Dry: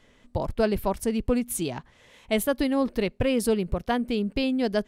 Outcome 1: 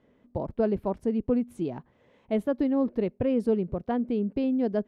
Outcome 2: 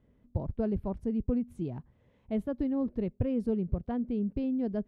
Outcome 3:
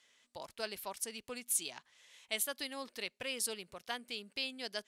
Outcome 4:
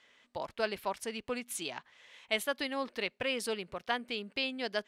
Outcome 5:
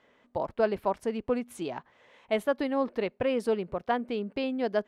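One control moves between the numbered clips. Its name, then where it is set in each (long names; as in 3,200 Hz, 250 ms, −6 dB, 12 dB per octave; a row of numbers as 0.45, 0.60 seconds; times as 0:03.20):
resonant band-pass, frequency: 290, 100, 7,000, 2,700, 880 Hertz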